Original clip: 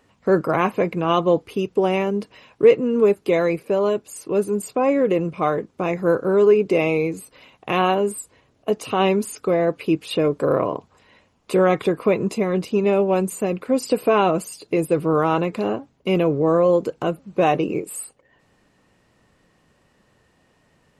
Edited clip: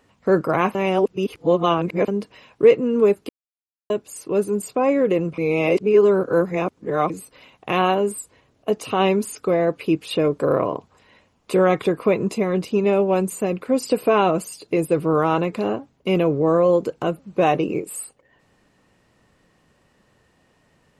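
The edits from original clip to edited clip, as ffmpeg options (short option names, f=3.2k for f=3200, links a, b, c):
-filter_complex "[0:a]asplit=7[a][b][c][d][e][f][g];[a]atrim=end=0.752[h];[b]atrim=start=0.748:end=2.082,asetpts=PTS-STARTPTS,areverse[i];[c]atrim=start=2.078:end=3.29,asetpts=PTS-STARTPTS,afade=t=out:st=1.208:d=0.004:c=hsin[j];[d]atrim=start=3.29:end=3.9,asetpts=PTS-STARTPTS,volume=0[k];[e]atrim=start=3.9:end=5.382,asetpts=PTS-STARTPTS,afade=t=in:d=0.004:c=hsin[l];[f]atrim=start=5.378:end=7.102,asetpts=PTS-STARTPTS,areverse[m];[g]atrim=start=7.098[n];[h][i]acrossfade=d=0.004:c1=hsin:c2=hsin[o];[j][k][l]concat=n=3:v=0:a=1[p];[o][p]acrossfade=d=0.004:c1=hsin:c2=hsin[q];[q][m]acrossfade=d=0.004:c1=hsin:c2=hsin[r];[r][n]acrossfade=d=0.004:c1=hsin:c2=hsin"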